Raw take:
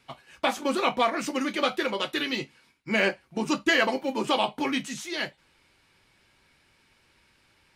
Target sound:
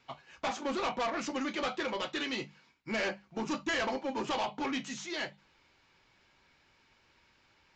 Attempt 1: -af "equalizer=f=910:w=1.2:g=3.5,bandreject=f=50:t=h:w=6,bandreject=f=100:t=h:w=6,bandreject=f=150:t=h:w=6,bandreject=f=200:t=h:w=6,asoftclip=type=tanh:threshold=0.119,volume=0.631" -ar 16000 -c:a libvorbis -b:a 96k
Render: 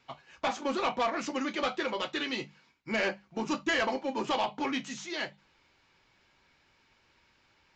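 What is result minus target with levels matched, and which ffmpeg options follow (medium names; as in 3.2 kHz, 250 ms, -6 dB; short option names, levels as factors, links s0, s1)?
saturation: distortion -5 dB
-af "equalizer=f=910:w=1.2:g=3.5,bandreject=f=50:t=h:w=6,bandreject=f=100:t=h:w=6,bandreject=f=150:t=h:w=6,bandreject=f=200:t=h:w=6,asoftclip=type=tanh:threshold=0.0596,volume=0.631" -ar 16000 -c:a libvorbis -b:a 96k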